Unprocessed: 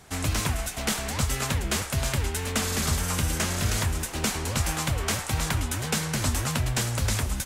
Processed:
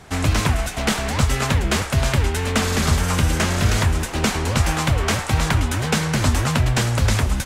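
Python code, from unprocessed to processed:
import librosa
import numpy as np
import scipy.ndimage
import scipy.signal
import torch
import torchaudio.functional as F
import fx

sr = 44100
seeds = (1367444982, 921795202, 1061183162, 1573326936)

y = fx.lowpass(x, sr, hz=3600.0, slope=6)
y = y * librosa.db_to_amplitude(8.5)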